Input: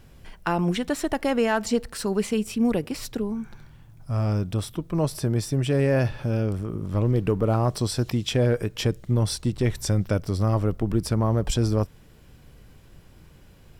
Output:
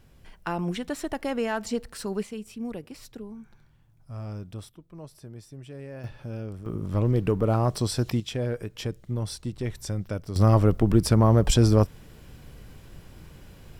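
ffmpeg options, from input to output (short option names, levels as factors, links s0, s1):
-af "asetnsamples=n=441:p=0,asendcmd='2.23 volume volume -12dB;4.69 volume volume -19dB;6.04 volume volume -10.5dB;6.66 volume volume -1dB;8.2 volume volume -7.5dB;10.36 volume volume 4dB',volume=0.531"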